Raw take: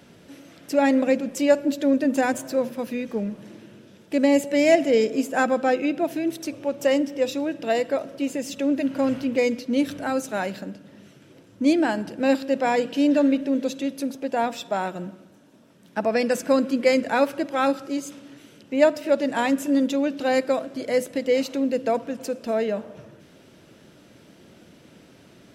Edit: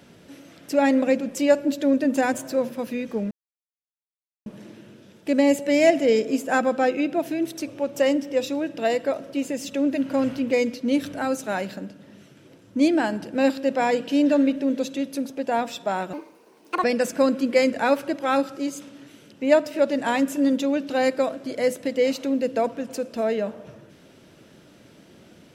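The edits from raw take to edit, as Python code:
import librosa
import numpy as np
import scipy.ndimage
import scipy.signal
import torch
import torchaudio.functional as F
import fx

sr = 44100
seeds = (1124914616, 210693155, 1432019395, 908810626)

y = fx.edit(x, sr, fx.insert_silence(at_s=3.31, length_s=1.15),
    fx.speed_span(start_s=14.98, length_s=1.16, speed=1.64), tone=tone)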